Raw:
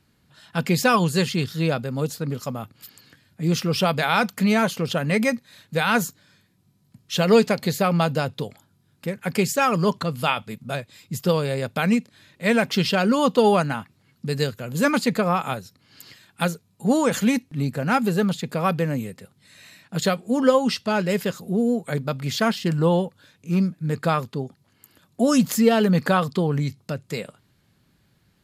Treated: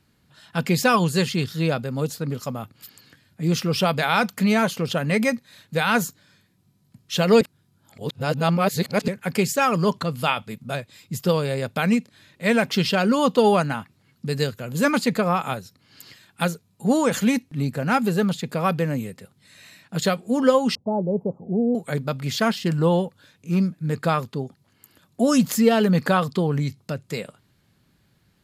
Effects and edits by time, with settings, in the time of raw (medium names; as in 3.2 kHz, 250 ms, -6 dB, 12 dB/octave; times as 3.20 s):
7.41–9.08 s: reverse
20.75–21.75 s: elliptic low-pass 850 Hz, stop band 50 dB